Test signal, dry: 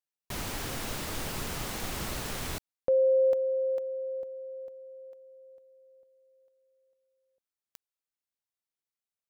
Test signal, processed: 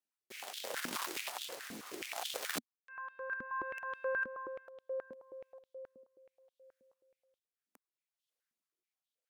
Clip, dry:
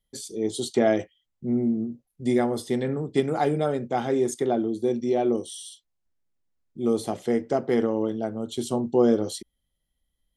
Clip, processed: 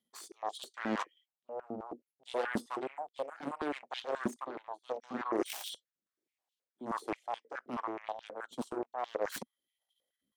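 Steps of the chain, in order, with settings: overloaded stage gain 12 dB; reverse; compressor 8:1, threshold -37 dBFS; reverse; transient shaper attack -3 dB, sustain -7 dB; rotary speaker horn 0.7 Hz; added harmonics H 3 -26 dB, 4 -13 dB, 5 -31 dB, 7 -11 dB, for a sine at -27.5 dBFS; stepped high-pass 9.4 Hz 240–3300 Hz; gain +2 dB

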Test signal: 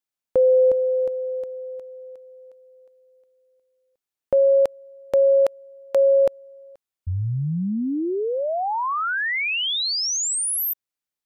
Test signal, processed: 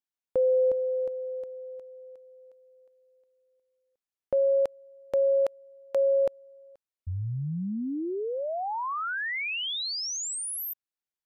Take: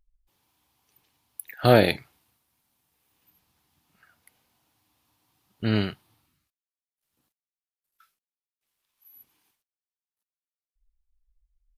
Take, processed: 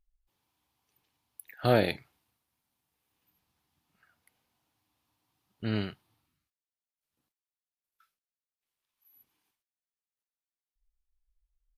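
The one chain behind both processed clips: high shelf 6300 Hz -3.5 dB; gain -7 dB

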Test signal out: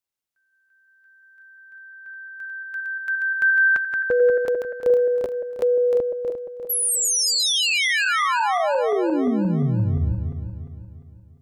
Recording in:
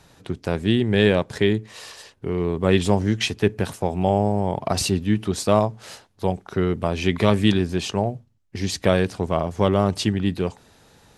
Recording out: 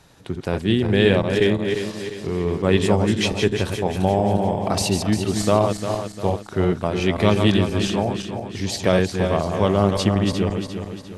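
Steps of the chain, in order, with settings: regenerating reverse delay 0.175 s, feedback 65%, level -5.5 dB

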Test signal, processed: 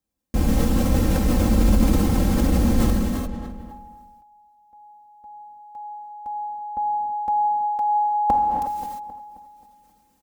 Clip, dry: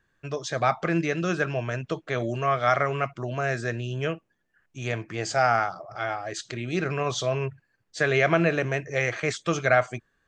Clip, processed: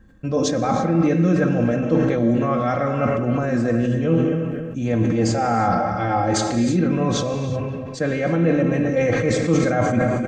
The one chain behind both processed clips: tilt shelf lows +10 dB, about 880 Hz; darkening echo 0.266 s, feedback 37%, low-pass 3500 Hz, level -22.5 dB; reverse; compressor 12:1, threshold -28 dBFS; reverse; HPF 42 Hz 6 dB/oct; tone controls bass +7 dB, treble +5 dB; comb 3.8 ms, depth 79%; non-linear reverb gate 0.38 s flat, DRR 4 dB; sustainer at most 26 dB/s; gain +9 dB

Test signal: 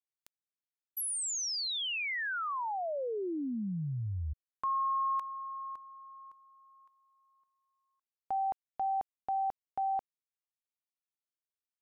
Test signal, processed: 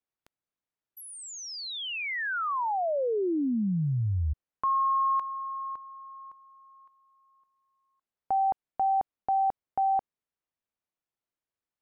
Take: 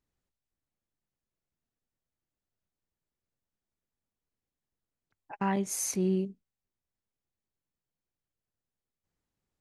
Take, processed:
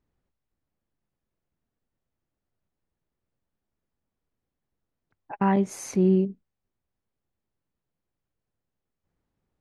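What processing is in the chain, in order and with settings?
LPF 1300 Hz 6 dB/oct; gain +8 dB

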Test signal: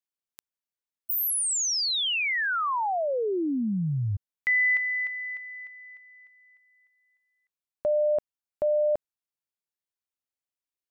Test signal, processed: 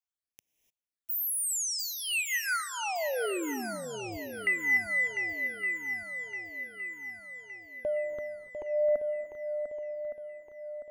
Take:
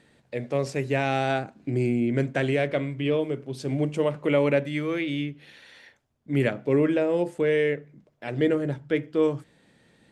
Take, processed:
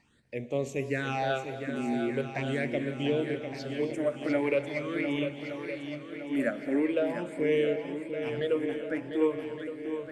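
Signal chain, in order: bell 150 Hz -6 dB 0.77 oct; phaser stages 8, 0.42 Hz, lowest notch 120–1600 Hz; on a send: swung echo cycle 1.165 s, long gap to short 1.5:1, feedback 46%, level -8 dB; on the sum: non-linear reverb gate 0.32 s rising, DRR 11.5 dB; gain -2.5 dB

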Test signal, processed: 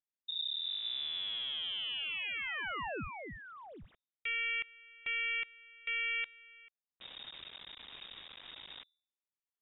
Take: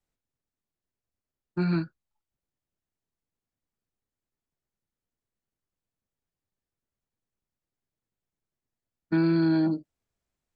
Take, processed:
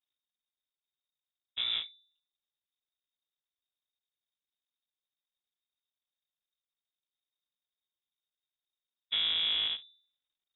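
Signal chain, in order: cycle switcher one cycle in 3, muted; de-hum 78.8 Hz, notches 2; inverted band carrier 3700 Hz; gain -6 dB

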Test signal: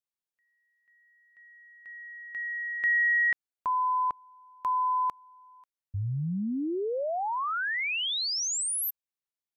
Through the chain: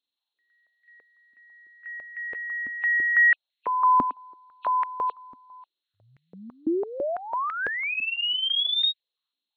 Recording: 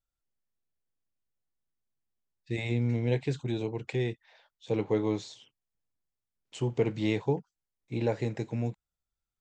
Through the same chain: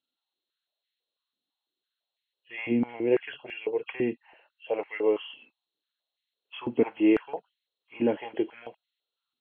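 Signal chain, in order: nonlinear frequency compression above 2500 Hz 4:1; stepped high-pass 6 Hz 260–2000 Hz

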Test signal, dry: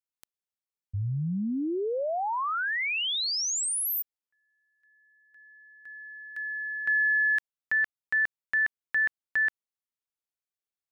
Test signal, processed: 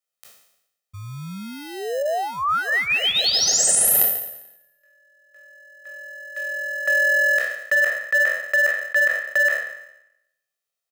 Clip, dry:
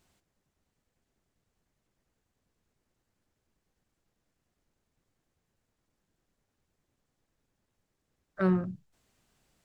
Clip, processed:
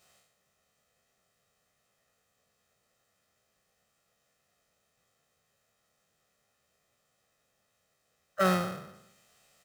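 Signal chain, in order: spectral trails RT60 0.84 s; in parallel at -9 dB: sample-and-hold 38×; on the sum: HPF 690 Hz 6 dB/oct; comb 1.6 ms, depth 66%; gain +5 dB

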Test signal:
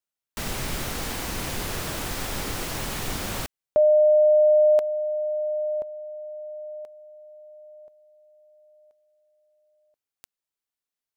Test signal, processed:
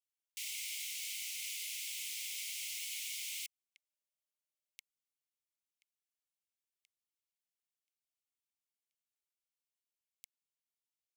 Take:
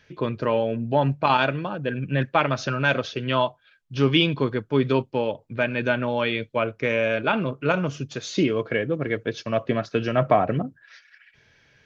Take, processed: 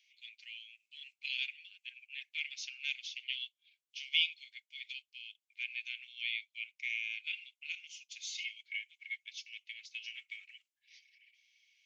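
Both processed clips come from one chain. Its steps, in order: rippled Chebyshev high-pass 2100 Hz, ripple 3 dB; gain -5.5 dB

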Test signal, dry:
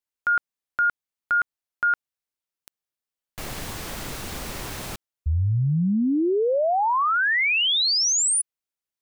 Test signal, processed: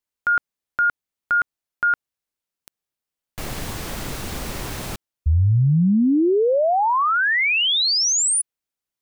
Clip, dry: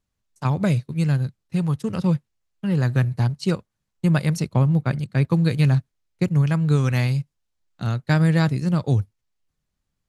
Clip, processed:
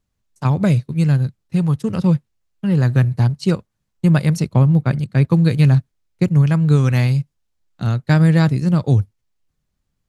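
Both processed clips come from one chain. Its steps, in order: low shelf 480 Hz +3.5 dB; gain +2 dB

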